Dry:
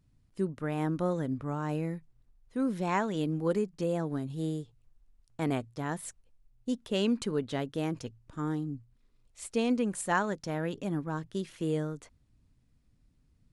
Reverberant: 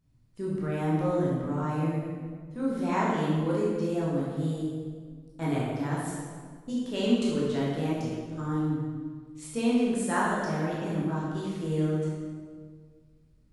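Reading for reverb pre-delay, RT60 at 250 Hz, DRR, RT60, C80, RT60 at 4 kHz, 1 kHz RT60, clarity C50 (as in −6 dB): 14 ms, 2.2 s, −6.5 dB, 1.8 s, 1.0 dB, 1.2 s, 1.6 s, −1.5 dB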